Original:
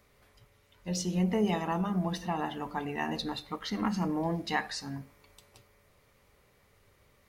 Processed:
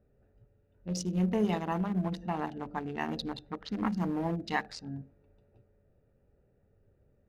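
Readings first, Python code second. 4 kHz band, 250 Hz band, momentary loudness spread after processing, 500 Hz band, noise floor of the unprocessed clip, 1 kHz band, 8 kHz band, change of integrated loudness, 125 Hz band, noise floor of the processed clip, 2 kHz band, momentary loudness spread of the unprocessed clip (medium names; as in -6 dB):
-5.0 dB, -0.5 dB, 12 LU, -1.0 dB, -66 dBFS, -2.0 dB, -4.5 dB, -1.0 dB, 0.0 dB, -69 dBFS, -2.0 dB, 8 LU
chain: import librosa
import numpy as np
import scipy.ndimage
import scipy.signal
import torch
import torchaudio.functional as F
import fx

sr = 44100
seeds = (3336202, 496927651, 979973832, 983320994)

y = fx.wiener(x, sr, points=41)
y = fx.env_lowpass(y, sr, base_hz=2800.0, full_db=-30.5)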